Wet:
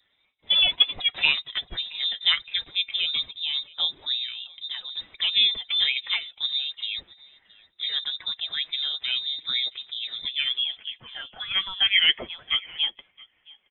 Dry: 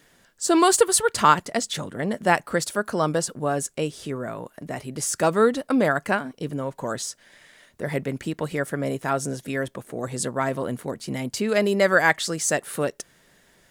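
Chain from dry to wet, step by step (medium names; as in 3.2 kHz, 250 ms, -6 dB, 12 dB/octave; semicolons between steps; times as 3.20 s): coarse spectral quantiser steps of 15 dB; gate -45 dBFS, range -7 dB; flange 0.36 Hz, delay 4.6 ms, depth 2.6 ms, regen +41%; wow and flutter 140 cents; on a send: delay 671 ms -24 dB; on the sum: high-pass sweep 110 Hz -> 670 Hz, 9.89–10.84 s; frequency inversion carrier 3.8 kHz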